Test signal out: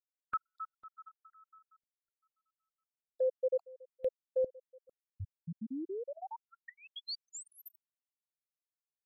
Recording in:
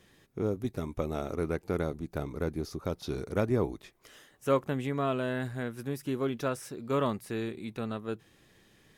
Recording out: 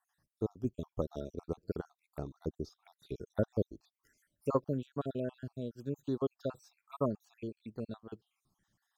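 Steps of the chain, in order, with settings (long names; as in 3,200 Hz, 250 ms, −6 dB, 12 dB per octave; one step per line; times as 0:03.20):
time-frequency cells dropped at random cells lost 57%
phaser swept by the level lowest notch 380 Hz, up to 2,100 Hz, full sweep at −37 dBFS
expander for the loud parts 1.5 to 1, over −49 dBFS
level +1 dB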